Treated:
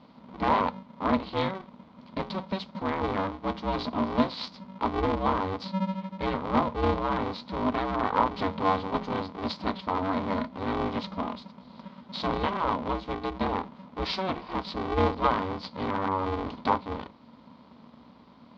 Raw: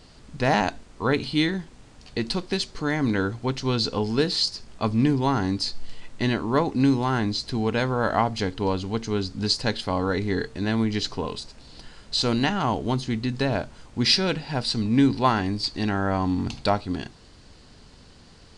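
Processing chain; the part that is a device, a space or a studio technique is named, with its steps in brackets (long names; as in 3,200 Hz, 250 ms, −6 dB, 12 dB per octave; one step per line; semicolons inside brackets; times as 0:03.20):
0:08.33–0:09.21: comb filter 3.7 ms, depth 100%
ring modulator pedal into a guitar cabinet (ring modulator with a square carrier 190 Hz; loudspeaker in its box 76–3,500 Hz, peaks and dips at 110 Hz −8 dB, 240 Hz +10 dB, 370 Hz −7 dB, 1,000 Hz +9 dB, 1,700 Hz −8 dB, 2,700 Hz −7 dB)
level −4.5 dB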